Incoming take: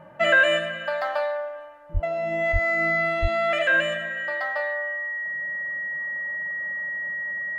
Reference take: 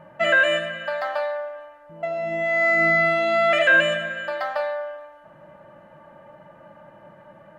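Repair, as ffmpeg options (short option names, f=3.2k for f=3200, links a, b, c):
-filter_complex "[0:a]bandreject=f=1.9k:w=30,asplit=3[a][b][c];[a]afade=t=out:st=1.93:d=0.02[d];[b]highpass=f=140:w=0.5412,highpass=f=140:w=1.3066,afade=t=in:st=1.93:d=0.02,afade=t=out:st=2.05:d=0.02[e];[c]afade=t=in:st=2.05:d=0.02[f];[d][e][f]amix=inputs=3:normalize=0,asplit=3[g][h][i];[g]afade=t=out:st=2.52:d=0.02[j];[h]highpass=f=140:w=0.5412,highpass=f=140:w=1.3066,afade=t=in:st=2.52:d=0.02,afade=t=out:st=2.64:d=0.02[k];[i]afade=t=in:st=2.64:d=0.02[l];[j][k][l]amix=inputs=3:normalize=0,asplit=3[m][n][o];[m]afade=t=out:st=3.21:d=0.02[p];[n]highpass=f=140:w=0.5412,highpass=f=140:w=1.3066,afade=t=in:st=3.21:d=0.02,afade=t=out:st=3.33:d=0.02[q];[o]afade=t=in:st=3.33:d=0.02[r];[p][q][r]amix=inputs=3:normalize=0,asetnsamples=n=441:p=0,asendcmd='2.52 volume volume 4.5dB',volume=0dB"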